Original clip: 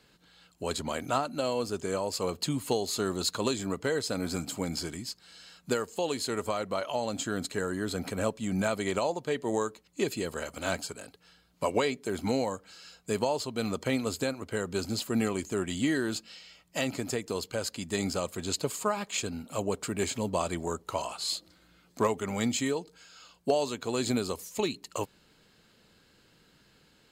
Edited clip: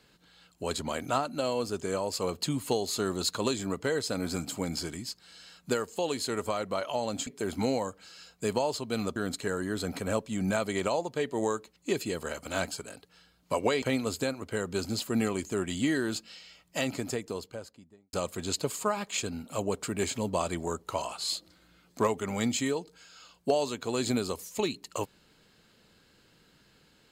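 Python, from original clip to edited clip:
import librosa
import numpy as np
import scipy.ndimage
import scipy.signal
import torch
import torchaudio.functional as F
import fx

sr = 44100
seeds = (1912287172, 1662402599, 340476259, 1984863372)

y = fx.studio_fade_out(x, sr, start_s=16.93, length_s=1.2)
y = fx.edit(y, sr, fx.move(start_s=11.93, length_s=1.89, to_s=7.27), tone=tone)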